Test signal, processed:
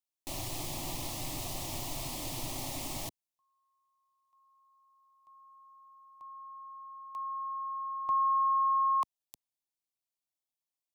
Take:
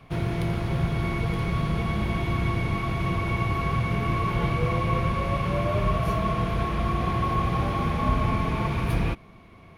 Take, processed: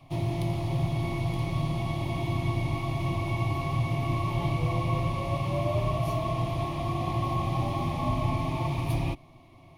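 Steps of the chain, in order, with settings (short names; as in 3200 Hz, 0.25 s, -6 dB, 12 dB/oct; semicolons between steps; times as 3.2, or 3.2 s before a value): fixed phaser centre 300 Hz, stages 8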